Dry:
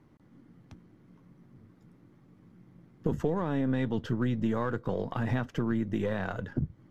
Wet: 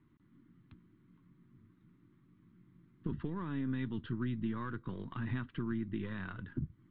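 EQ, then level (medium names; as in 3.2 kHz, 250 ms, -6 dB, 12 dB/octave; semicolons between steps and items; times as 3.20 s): steep low-pass 4.1 kHz 72 dB/octave; high-order bell 610 Hz -15 dB 1.1 oct; -7.0 dB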